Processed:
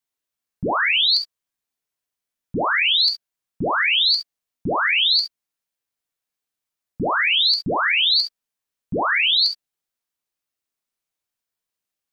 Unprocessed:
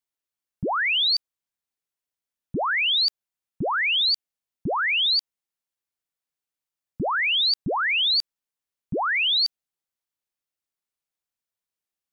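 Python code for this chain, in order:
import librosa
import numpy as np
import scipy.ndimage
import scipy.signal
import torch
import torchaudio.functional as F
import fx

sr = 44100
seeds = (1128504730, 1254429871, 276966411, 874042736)

y = fx.rev_gated(x, sr, seeds[0], gate_ms=90, shape='flat', drr_db=3.0)
y = F.gain(torch.from_numpy(y), 2.0).numpy()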